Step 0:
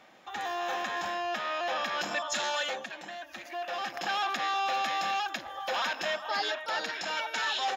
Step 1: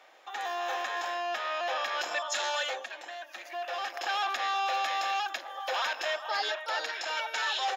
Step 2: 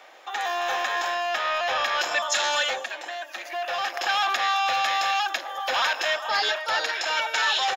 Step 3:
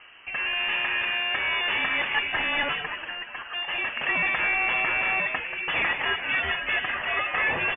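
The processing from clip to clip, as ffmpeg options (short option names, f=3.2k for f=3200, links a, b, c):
-af "highpass=f=400:w=0.5412,highpass=f=400:w=1.3066"
-filter_complex "[0:a]acrossover=split=950|7000[a][b][c];[a]asoftclip=type=tanh:threshold=-36.5dB[d];[c]aecho=1:1:209:0.398[e];[d][b][e]amix=inputs=3:normalize=0,volume=8dB"
-filter_complex "[0:a]asplit=6[a][b][c][d][e][f];[b]adelay=183,afreqshift=120,volume=-9dB[g];[c]adelay=366,afreqshift=240,volume=-16.7dB[h];[d]adelay=549,afreqshift=360,volume=-24.5dB[i];[e]adelay=732,afreqshift=480,volume=-32.2dB[j];[f]adelay=915,afreqshift=600,volume=-40dB[k];[a][g][h][i][j][k]amix=inputs=6:normalize=0,asubboost=boost=8.5:cutoff=140,lowpass=f=3k:t=q:w=0.5098,lowpass=f=3k:t=q:w=0.6013,lowpass=f=3k:t=q:w=0.9,lowpass=f=3k:t=q:w=2.563,afreqshift=-3500"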